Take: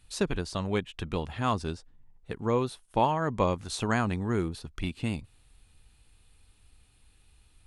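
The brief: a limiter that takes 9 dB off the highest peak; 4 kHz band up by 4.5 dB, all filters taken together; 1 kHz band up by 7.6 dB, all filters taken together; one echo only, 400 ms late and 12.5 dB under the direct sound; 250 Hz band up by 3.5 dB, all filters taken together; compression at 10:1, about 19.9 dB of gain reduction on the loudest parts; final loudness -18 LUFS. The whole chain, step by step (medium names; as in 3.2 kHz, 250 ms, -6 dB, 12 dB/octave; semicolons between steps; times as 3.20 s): peaking EQ 250 Hz +4 dB; peaking EQ 1 kHz +8.5 dB; peaking EQ 4 kHz +5 dB; compression 10:1, threshold -34 dBFS; peak limiter -30 dBFS; delay 400 ms -12.5 dB; trim +23.5 dB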